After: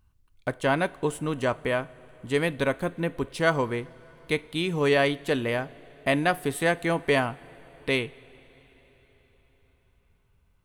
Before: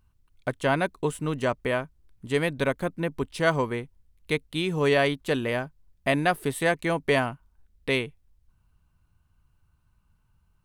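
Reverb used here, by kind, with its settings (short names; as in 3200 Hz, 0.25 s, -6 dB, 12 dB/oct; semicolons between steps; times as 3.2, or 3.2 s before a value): two-slope reverb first 0.3 s, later 4.7 s, from -18 dB, DRR 15 dB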